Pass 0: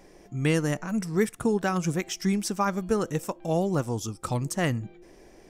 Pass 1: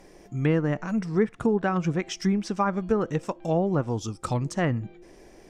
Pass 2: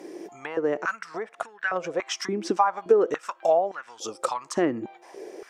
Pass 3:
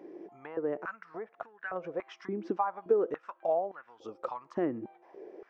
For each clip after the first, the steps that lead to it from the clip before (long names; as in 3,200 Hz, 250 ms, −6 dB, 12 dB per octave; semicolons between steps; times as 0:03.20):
treble cut that deepens with the level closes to 1,600 Hz, closed at −20.5 dBFS; level +1.5 dB
downward compressor 6 to 1, threshold −28 dBFS, peak gain reduction 11 dB; high-pass on a step sequencer 3.5 Hz 330–1,700 Hz; level +4.5 dB
head-to-tape spacing loss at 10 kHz 42 dB; level −5.5 dB